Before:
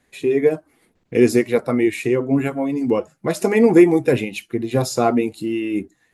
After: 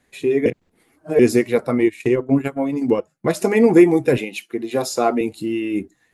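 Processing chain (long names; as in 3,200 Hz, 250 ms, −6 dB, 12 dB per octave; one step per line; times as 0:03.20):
0:00.46–0:01.19: reverse
0:01.78–0:03.33: transient designer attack +3 dB, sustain −12 dB
0:04.18–0:05.21: high-pass filter 270 Hz 12 dB per octave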